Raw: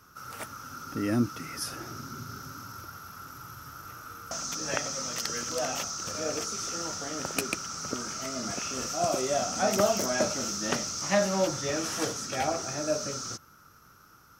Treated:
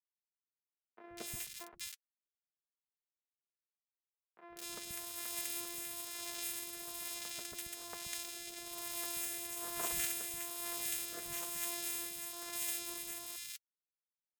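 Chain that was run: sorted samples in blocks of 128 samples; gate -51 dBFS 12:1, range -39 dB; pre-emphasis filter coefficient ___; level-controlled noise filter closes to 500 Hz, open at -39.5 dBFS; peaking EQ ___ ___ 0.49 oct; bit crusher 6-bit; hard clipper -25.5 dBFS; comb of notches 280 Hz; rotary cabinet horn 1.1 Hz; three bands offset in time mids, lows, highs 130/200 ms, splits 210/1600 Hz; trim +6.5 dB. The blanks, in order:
0.9, 4.4 kHz, -5.5 dB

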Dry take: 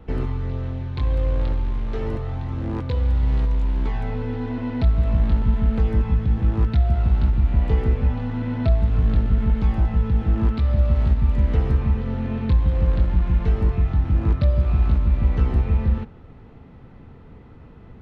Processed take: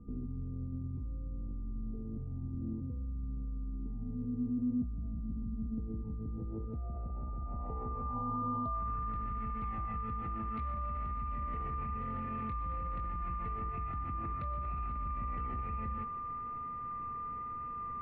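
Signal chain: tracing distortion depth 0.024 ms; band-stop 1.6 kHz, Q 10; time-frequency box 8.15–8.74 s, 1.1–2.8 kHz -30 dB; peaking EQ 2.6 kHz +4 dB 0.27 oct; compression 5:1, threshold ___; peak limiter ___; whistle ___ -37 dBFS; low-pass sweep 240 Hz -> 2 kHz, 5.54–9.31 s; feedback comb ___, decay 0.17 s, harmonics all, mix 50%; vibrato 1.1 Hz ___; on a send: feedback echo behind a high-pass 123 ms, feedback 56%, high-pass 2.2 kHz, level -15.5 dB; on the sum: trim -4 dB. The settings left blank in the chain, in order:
-21 dBFS, -25 dBFS, 1.2 kHz, 240 Hz, 5.5 cents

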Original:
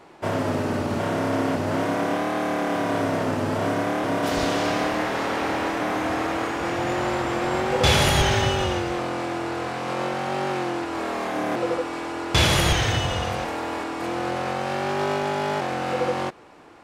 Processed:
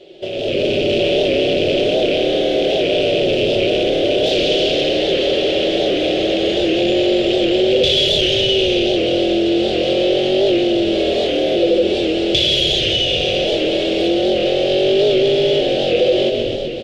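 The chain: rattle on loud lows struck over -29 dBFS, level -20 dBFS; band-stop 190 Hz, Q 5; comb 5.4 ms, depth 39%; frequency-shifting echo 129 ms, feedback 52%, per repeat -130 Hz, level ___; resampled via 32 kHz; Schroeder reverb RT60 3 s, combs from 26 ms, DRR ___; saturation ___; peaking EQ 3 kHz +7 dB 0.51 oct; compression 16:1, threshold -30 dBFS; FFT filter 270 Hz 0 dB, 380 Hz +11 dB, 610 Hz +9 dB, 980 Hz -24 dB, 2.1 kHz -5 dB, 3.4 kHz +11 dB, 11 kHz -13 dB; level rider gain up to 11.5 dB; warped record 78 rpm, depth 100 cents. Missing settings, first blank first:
-9 dB, 14 dB, -20.5 dBFS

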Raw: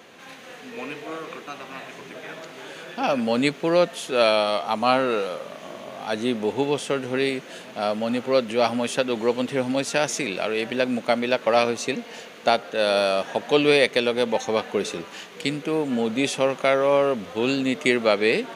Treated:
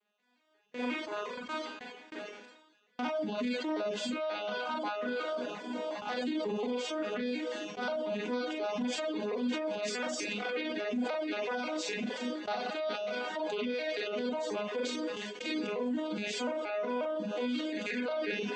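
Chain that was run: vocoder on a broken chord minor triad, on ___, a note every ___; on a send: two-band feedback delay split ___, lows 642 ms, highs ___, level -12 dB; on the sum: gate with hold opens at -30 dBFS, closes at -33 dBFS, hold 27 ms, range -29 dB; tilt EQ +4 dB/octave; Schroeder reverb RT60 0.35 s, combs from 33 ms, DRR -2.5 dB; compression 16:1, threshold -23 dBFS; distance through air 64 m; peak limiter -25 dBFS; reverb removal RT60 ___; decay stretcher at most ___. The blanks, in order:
G#3, 179 ms, 440 Hz, 87 ms, 0.89 s, 53 dB/s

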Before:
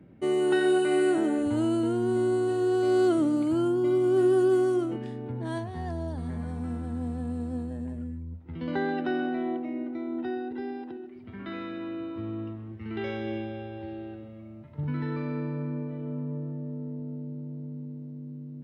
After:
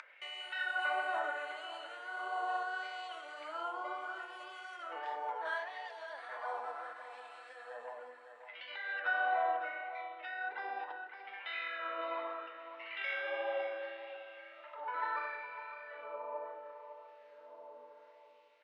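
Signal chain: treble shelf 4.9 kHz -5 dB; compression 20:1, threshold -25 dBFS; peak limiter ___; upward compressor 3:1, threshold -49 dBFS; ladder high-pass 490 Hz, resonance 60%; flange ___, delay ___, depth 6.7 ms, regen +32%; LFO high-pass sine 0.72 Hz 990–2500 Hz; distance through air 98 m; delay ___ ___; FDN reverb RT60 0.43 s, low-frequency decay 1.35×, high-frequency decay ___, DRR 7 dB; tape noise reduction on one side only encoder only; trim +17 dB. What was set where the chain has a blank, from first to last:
-27 dBFS, 1.7 Hz, 0.8 ms, 555 ms, -11.5 dB, 0.3×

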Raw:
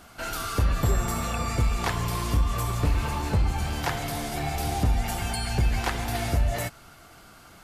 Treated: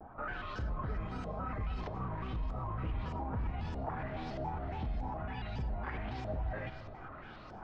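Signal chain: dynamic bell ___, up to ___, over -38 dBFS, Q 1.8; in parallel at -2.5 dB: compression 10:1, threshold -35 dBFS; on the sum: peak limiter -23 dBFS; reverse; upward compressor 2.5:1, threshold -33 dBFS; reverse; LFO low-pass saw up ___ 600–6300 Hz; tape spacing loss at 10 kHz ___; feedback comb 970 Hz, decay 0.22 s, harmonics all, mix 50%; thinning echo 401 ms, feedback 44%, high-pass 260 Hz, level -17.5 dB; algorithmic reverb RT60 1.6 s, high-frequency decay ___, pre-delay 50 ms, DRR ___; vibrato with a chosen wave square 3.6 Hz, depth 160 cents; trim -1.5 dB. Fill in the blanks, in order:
200 Hz, +3 dB, 1.6 Hz, 31 dB, 0.3×, 11.5 dB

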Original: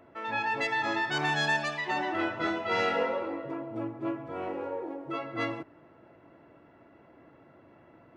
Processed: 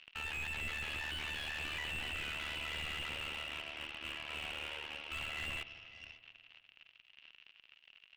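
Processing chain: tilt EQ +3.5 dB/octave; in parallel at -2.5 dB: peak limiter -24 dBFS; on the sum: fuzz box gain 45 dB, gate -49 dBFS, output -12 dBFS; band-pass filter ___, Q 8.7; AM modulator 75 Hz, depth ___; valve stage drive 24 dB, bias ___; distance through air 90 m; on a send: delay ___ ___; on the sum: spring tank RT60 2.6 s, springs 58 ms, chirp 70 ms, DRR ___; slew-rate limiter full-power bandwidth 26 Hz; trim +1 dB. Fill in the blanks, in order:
2.8 kHz, 80%, 0.75, 550 ms, -21.5 dB, 17 dB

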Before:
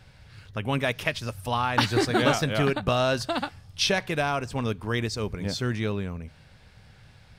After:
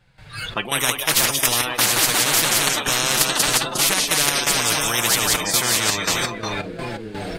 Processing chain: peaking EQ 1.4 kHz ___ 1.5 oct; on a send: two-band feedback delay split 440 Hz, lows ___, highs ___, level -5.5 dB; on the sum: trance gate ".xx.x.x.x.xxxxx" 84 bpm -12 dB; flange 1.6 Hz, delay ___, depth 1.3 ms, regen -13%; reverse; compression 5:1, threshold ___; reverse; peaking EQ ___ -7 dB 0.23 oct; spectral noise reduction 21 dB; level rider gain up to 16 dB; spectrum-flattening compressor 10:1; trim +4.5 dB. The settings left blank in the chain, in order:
+2 dB, 601 ms, 180 ms, 5.6 ms, -35 dBFS, 5.5 kHz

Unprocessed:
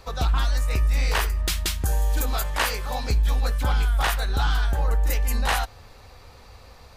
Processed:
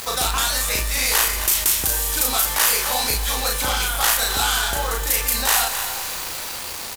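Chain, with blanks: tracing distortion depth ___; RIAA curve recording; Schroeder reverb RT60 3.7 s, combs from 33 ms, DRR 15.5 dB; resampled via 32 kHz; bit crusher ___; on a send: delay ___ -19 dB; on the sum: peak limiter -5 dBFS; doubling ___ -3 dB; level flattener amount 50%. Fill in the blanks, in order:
0.31 ms, 7-bit, 262 ms, 35 ms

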